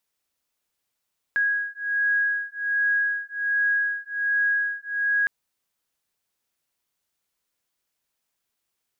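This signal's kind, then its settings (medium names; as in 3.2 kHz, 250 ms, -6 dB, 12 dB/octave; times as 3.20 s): beating tones 1.65 kHz, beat 1.3 Hz, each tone -24.5 dBFS 3.91 s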